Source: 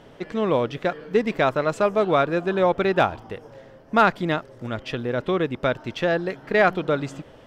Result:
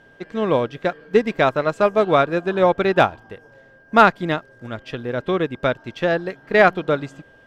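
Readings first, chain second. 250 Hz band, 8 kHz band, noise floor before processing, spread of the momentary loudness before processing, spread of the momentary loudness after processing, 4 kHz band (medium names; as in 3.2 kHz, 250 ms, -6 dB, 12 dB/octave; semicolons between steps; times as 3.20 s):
+2.0 dB, no reading, -48 dBFS, 11 LU, 12 LU, +2.5 dB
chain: whistle 1.6 kHz -44 dBFS; upward expansion 1.5:1, over -37 dBFS; trim +5.5 dB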